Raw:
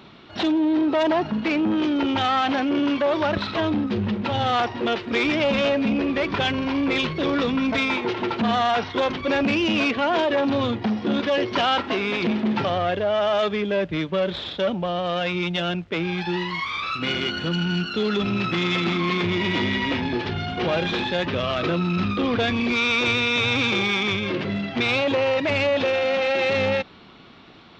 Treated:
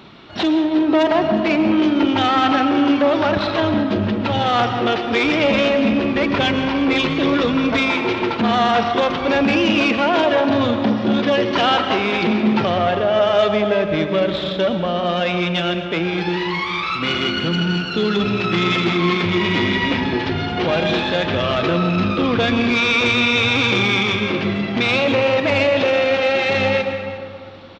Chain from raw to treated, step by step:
on a send: single-tap delay 358 ms −18 dB
on the sum: comb and all-pass reverb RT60 2.4 s, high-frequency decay 0.4×, pre-delay 80 ms, DRR 6 dB
level +4 dB

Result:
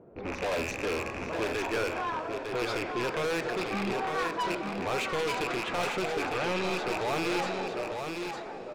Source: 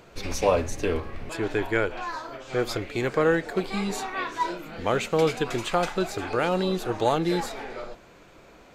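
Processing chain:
loose part that buzzes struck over −38 dBFS, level −17 dBFS
high-pass filter 310 Hz 6 dB per octave
low-pass that shuts in the quiet parts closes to 410 Hz, open at −19.5 dBFS
high-shelf EQ 4,000 Hz −6 dB
brickwall limiter −16 dBFS, peak gain reduction 6 dB
soft clipping −33 dBFS, distortion −5 dB
0:06.23–0:06.77: high-frequency loss of the air 64 metres
single-tap delay 904 ms −5.5 dB
convolution reverb RT60 5.2 s, pre-delay 57 ms, DRR 11.5 dB
level +5 dB

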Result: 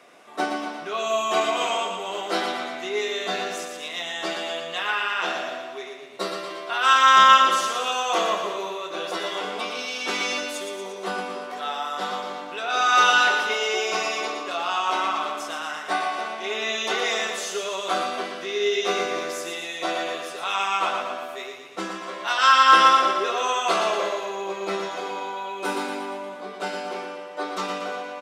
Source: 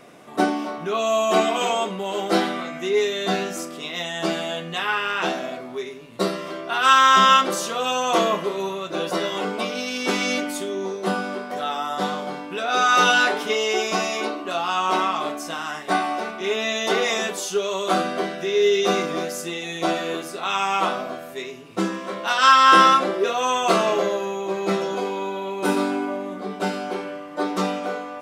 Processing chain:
meter weighting curve A
on a send: repeating echo 117 ms, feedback 57%, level −6 dB
on the sum: level −3 dB

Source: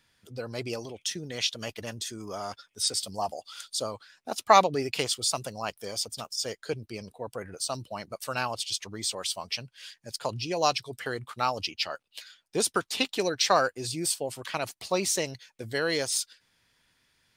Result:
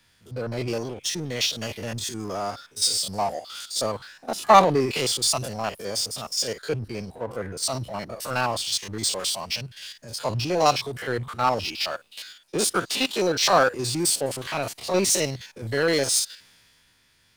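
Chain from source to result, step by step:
spectrum averaged block by block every 50 ms
power curve on the samples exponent 0.7
multiband upward and downward expander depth 40%

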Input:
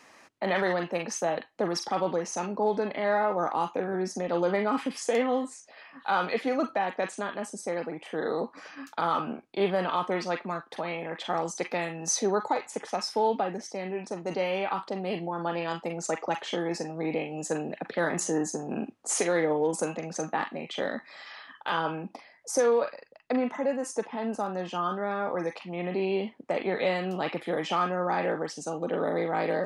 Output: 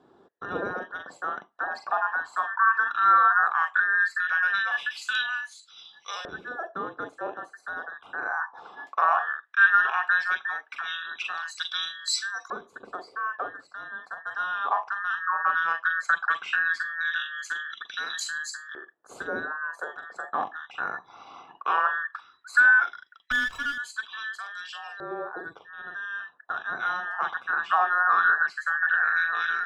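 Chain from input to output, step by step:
frequency inversion band by band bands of 2,000 Hz
auto-filter band-pass saw up 0.16 Hz 370–4,700 Hz
0:23.31–0:23.78: windowed peak hold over 5 samples
level +8.5 dB

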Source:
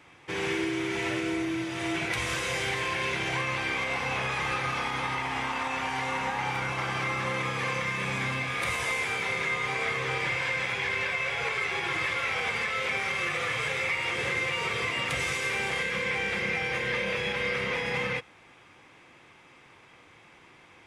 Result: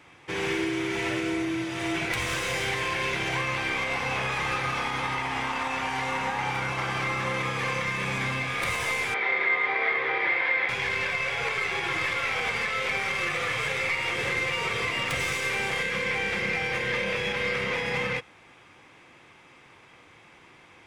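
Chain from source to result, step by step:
stylus tracing distortion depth 0.032 ms
0:09.14–0:10.69: loudspeaker in its box 350–3,600 Hz, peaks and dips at 350 Hz +6 dB, 750 Hz +4 dB, 2,000 Hz +7 dB, 2,800 Hz −7 dB
level +1.5 dB

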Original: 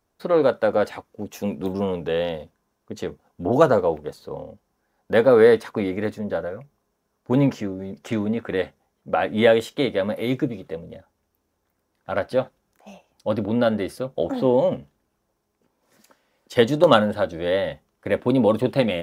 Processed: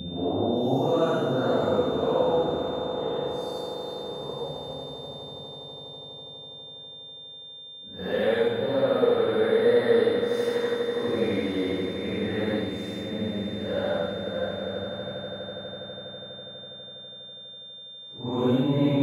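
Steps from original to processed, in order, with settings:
brickwall limiter −11.5 dBFS, peak gain reduction 10 dB
extreme stretch with random phases 4.7×, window 0.10 s, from 0:03.40
steady tone 3,600 Hz −36 dBFS
echo that builds up and dies away 82 ms, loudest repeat 8, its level −15.5 dB
level −4 dB

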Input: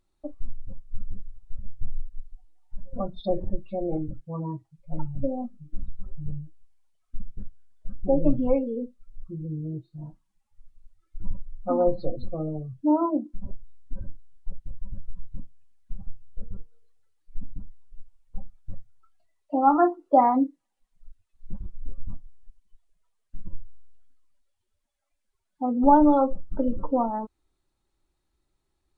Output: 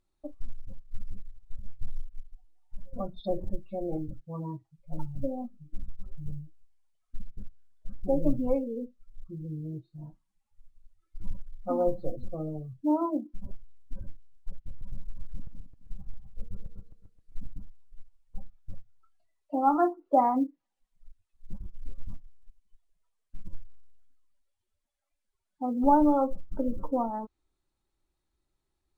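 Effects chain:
0:14.55–0:17.47: feedback delay that plays each chunk backwards 132 ms, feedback 47%, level −6 dB
treble cut that deepens with the level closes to 2,000 Hz, closed at −21 dBFS
floating-point word with a short mantissa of 6 bits
level −4.5 dB

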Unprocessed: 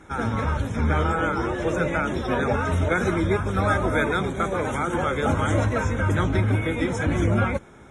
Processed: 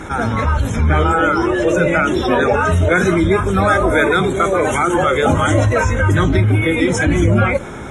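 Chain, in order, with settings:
noise reduction from a noise print of the clip's start 8 dB
envelope flattener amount 50%
level +7.5 dB

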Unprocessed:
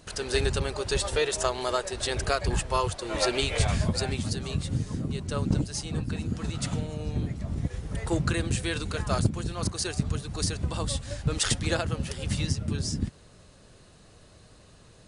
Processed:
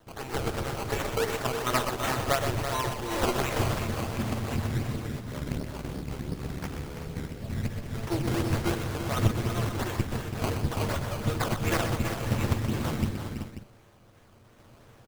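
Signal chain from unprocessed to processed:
lower of the sound and its delayed copy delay 8.8 ms
sample-and-hold tremolo 2.4 Hz
sample-and-hold swept by an LFO 17×, swing 100% 2.8 Hz
0:05.19–0:07.39: ring modulation 36 Hz
multi-tap delay 125/330/380/538 ms −8/−8.5/−10/−13 dB
level +1.5 dB

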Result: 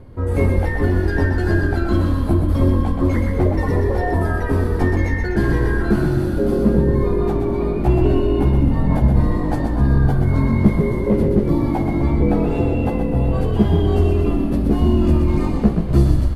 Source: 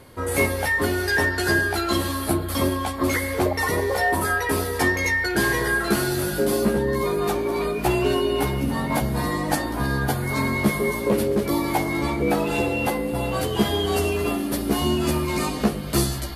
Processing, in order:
spectral tilt −4.5 dB per octave
mains-hum notches 50/100/150 Hz
on a send: echo with shifted repeats 125 ms, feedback 55%, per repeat −42 Hz, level −5.5 dB
on the sum: level −4 dB

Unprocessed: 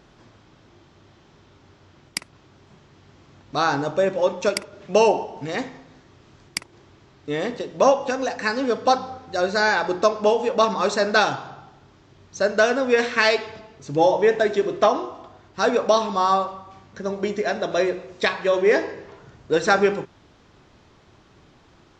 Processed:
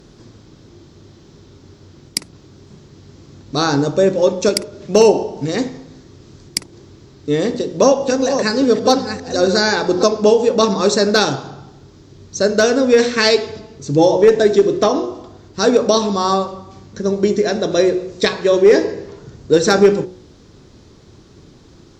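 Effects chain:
0:07.43–0:10.03: delay that plays each chunk backwards 682 ms, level −8 dB
flat-topped bell 1,400 Hz −10 dB 2.7 octaves
hum removal 61 Hz, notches 15
asymmetric clip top −13.5 dBFS, bottom −11.5 dBFS
boost into a limiter +12 dB
level −1 dB

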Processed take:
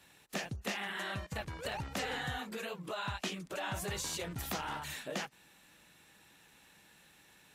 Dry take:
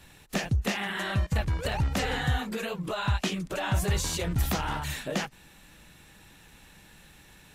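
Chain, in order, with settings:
high-pass filter 280 Hz 6 dB per octave
level −6.5 dB

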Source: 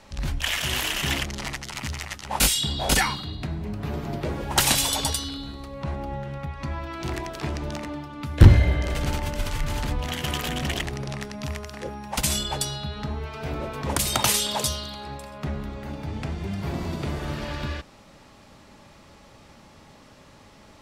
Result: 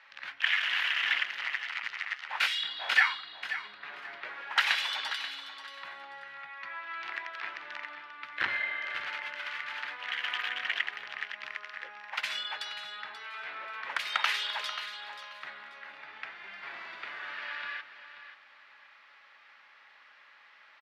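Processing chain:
high-pass with resonance 1,700 Hz, resonance Q 2
high-frequency loss of the air 330 metres
repeating echo 534 ms, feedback 23%, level −12 dB

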